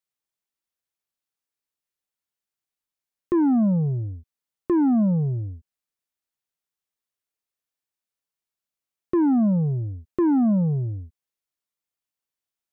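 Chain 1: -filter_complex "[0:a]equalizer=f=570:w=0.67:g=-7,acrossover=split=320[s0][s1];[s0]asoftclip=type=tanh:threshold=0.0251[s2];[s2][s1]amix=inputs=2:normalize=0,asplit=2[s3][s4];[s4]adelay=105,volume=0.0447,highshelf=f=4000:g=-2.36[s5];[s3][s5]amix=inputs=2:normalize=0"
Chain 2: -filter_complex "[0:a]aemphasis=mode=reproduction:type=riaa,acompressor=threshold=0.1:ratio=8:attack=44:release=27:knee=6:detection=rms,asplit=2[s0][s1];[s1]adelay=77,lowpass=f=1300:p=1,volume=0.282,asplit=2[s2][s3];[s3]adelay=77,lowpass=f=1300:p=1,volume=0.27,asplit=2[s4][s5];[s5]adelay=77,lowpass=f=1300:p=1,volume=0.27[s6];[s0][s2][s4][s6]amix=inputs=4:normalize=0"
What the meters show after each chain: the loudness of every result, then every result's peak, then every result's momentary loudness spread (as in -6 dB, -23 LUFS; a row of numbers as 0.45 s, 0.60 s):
-30.5 LUFS, -20.5 LUFS; -22.0 dBFS, -8.5 dBFS; 13 LU, 7 LU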